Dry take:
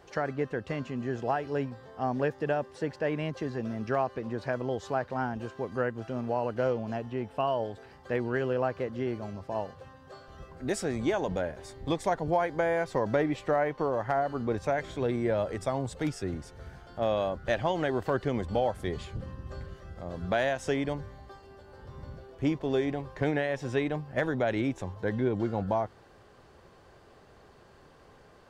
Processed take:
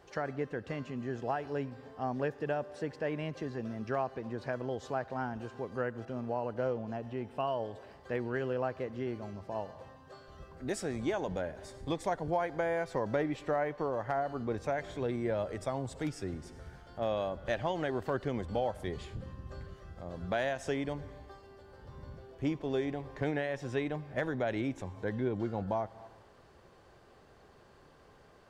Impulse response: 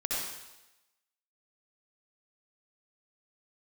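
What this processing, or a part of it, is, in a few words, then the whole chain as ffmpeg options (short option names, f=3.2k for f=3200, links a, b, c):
ducked reverb: -filter_complex "[0:a]asplit=3[a][b][c];[1:a]atrim=start_sample=2205[d];[b][d]afir=irnorm=-1:irlink=0[e];[c]apad=whole_len=1256514[f];[e][f]sidechaincompress=threshold=-42dB:ratio=8:attack=28:release=179,volume=-14.5dB[g];[a][g]amix=inputs=2:normalize=0,asettb=1/sr,asplit=3[h][i][j];[h]atrim=end=6.054[k];[i]atrim=start=6.05:end=7.03,asetpts=PTS-STARTPTS,afade=t=in:d=0.004:c=qsin,afade=t=out:st=0.976:d=0.004:c=qsin,adynamicequalizer=threshold=0.00501:dfrequency=1700:dqfactor=0.7:tfrequency=1700:tqfactor=0.7:attack=5:release=100:ratio=0.375:range=2.5:mode=cutabove:tftype=highshelf[l];[j]atrim=start=7.026[m];[k][l]acrossfade=d=0.004:c1=hsin:c2=qsin[n];[n][m]acrossfade=d=0.004:c1=qsin:c2=hsin,volume=-5dB"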